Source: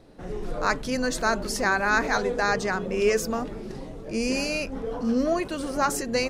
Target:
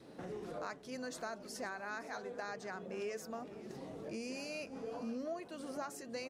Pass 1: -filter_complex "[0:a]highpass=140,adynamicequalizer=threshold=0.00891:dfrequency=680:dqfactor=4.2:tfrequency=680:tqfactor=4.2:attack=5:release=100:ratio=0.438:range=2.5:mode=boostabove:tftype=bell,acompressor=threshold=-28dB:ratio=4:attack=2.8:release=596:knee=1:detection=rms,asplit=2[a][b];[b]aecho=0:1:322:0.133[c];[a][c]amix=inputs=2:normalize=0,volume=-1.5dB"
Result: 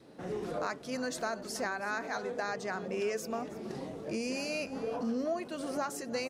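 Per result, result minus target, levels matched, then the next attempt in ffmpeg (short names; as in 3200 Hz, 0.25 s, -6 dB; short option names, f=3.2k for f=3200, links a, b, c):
compressor: peak gain reduction -8 dB; echo 0.193 s early
-filter_complex "[0:a]highpass=140,adynamicequalizer=threshold=0.00891:dfrequency=680:dqfactor=4.2:tfrequency=680:tqfactor=4.2:attack=5:release=100:ratio=0.438:range=2.5:mode=boostabove:tftype=bell,acompressor=threshold=-38.5dB:ratio=4:attack=2.8:release=596:knee=1:detection=rms,asplit=2[a][b];[b]aecho=0:1:322:0.133[c];[a][c]amix=inputs=2:normalize=0,volume=-1.5dB"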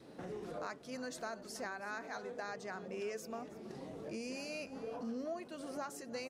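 echo 0.193 s early
-filter_complex "[0:a]highpass=140,adynamicequalizer=threshold=0.00891:dfrequency=680:dqfactor=4.2:tfrequency=680:tqfactor=4.2:attack=5:release=100:ratio=0.438:range=2.5:mode=boostabove:tftype=bell,acompressor=threshold=-38.5dB:ratio=4:attack=2.8:release=596:knee=1:detection=rms,asplit=2[a][b];[b]aecho=0:1:515:0.133[c];[a][c]amix=inputs=2:normalize=0,volume=-1.5dB"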